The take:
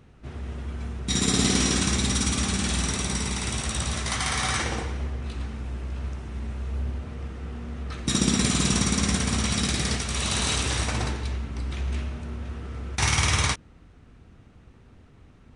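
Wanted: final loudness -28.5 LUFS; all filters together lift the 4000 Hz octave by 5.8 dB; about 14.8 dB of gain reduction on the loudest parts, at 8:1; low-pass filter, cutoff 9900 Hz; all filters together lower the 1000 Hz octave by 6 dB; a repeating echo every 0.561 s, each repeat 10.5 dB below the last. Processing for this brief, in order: LPF 9900 Hz; bell 1000 Hz -8.5 dB; bell 4000 Hz +7.5 dB; compressor 8:1, threshold -33 dBFS; feedback echo 0.561 s, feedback 30%, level -10.5 dB; gain +7 dB

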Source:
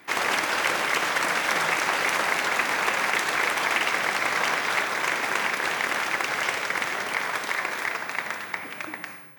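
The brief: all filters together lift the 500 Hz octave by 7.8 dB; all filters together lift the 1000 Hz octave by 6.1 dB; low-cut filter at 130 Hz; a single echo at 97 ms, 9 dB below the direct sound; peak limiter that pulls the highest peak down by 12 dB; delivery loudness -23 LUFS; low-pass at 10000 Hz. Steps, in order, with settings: HPF 130 Hz; LPF 10000 Hz; bell 500 Hz +8 dB; bell 1000 Hz +5.5 dB; limiter -16 dBFS; echo 97 ms -9 dB; gain +2 dB

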